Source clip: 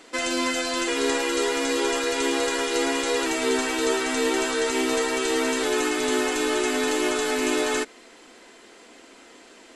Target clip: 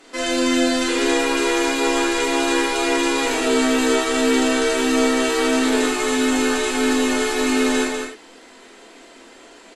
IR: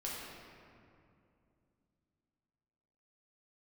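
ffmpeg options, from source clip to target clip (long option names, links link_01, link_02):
-filter_complex "[0:a]aecho=1:1:198:0.562[link_01];[1:a]atrim=start_sample=2205,atrim=end_sample=4410,asetrate=35721,aresample=44100[link_02];[link_01][link_02]afir=irnorm=-1:irlink=0,volume=2.5dB"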